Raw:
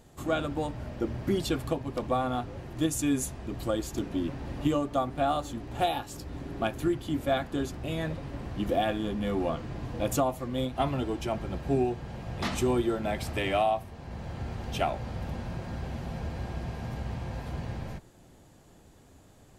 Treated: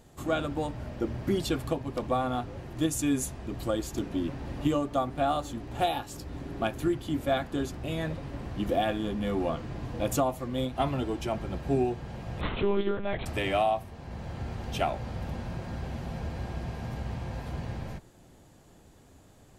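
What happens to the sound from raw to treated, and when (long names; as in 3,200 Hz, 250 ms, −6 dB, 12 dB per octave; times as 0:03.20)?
0:12.41–0:13.26: one-pitch LPC vocoder at 8 kHz 200 Hz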